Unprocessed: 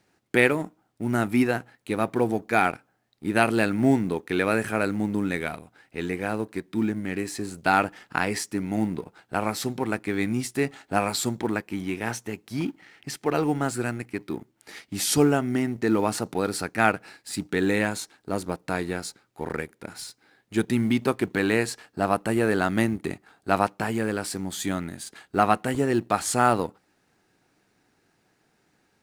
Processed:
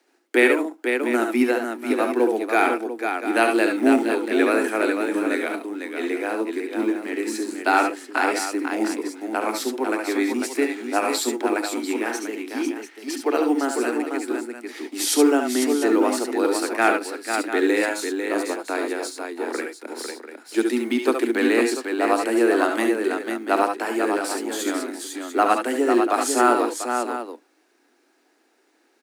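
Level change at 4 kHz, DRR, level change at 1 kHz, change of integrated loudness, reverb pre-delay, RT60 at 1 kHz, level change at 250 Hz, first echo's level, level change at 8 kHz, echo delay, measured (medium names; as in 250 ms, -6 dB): +3.5 dB, no reverb, +3.5 dB, +3.5 dB, no reverb, no reverb, +3.5 dB, -8.0 dB, +3.5 dB, 68 ms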